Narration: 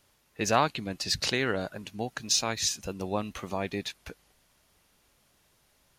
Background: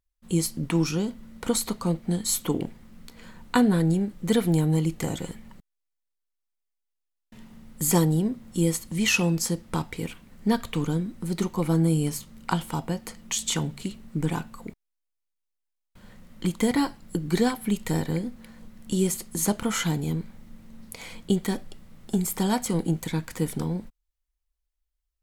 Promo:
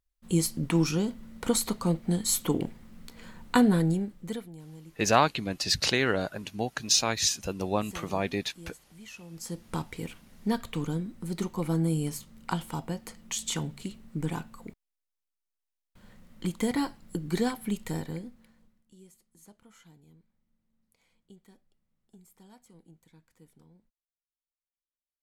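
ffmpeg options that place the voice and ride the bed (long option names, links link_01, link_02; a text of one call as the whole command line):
ffmpeg -i stem1.wav -i stem2.wav -filter_complex "[0:a]adelay=4600,volume=2.5dB[link_01];[1:a]volume=18dB,afade=type=out:start_time=3.69:duration=0.8:silence=0.0707946,afade=type=in:start_time=9.3:duration=0.41:silence=0.112202,afade=type=out:start_time=17.66:duration=1.2:silence=0.0530884[link_02];[link_01][link_02]amix=inputs=2:normalize=0" out.wav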